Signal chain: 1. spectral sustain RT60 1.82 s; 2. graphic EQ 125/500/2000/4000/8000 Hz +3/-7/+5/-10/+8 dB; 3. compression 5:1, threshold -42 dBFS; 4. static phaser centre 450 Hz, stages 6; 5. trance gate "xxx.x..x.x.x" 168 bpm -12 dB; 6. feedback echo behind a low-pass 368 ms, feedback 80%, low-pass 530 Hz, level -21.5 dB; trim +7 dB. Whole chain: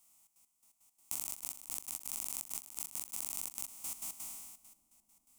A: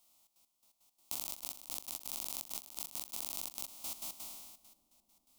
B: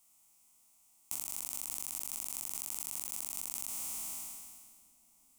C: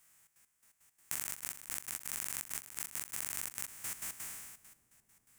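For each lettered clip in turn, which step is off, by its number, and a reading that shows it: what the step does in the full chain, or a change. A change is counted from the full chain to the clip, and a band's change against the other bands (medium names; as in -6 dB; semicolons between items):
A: 2, 8 kHz band -6.0 dB; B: 5, crest factor change -2.0 dB; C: 4, 2 kHz band +8.5 dB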